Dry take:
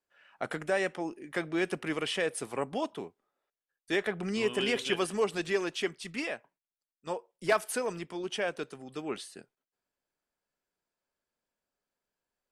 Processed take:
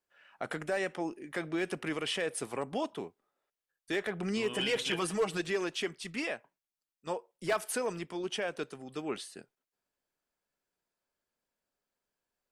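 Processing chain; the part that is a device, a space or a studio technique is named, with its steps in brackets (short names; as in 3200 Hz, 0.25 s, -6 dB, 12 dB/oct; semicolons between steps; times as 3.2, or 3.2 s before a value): 4.53–5.41 comb 6.3 ms, depth 75%; clipper into limiter (hard clip -19.5 dBFS, distortion -22 dB; limiter -23 dBFS, peak gain reduction 3.5 dB)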